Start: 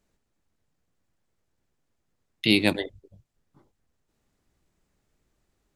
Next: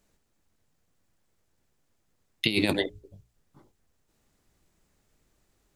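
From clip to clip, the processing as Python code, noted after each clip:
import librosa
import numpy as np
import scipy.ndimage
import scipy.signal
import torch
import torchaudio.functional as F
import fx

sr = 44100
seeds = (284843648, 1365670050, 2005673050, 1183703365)

y = fx.high_shelf(x, sr, hz=5400.0, db=4.5)
y = fx.hum_notches(y, sr, base_hz=60, count=7)
y = fx.over_compress(y, sr, threshold_db=-23.0, ratio=-0.5)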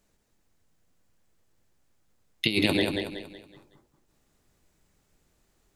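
y = fx.echo_feedback(x, sr, ms=186, feedback_pct=39, wet_db=-4.5)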